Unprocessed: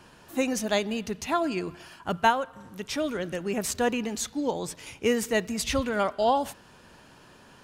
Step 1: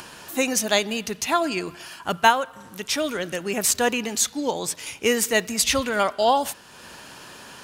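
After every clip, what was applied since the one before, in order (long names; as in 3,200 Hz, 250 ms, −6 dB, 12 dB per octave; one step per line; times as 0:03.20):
spectral tilt +2 dB per octave
upward compression, threshold −40 dBFS
level +5 dB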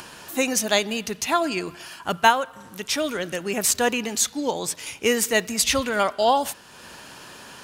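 no processing that can be heard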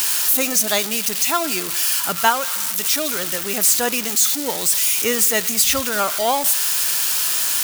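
spike at every zero crossing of −11 dBFS
dynamic equaliser 1,300 Hz, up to +5 dB, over −42 dBFS, Q 5
level −1 dB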